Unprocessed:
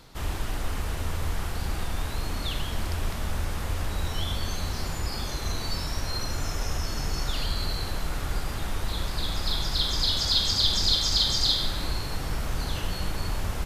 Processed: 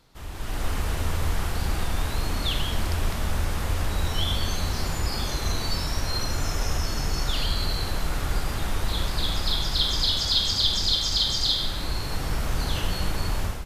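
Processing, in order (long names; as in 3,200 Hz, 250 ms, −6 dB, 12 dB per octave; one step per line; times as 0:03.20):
automatic gain control gain up to 13 dB
dynamic equaliser 3,200 Hz, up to +4 dB, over −31 dBFS, Q 4.9
level −9 dB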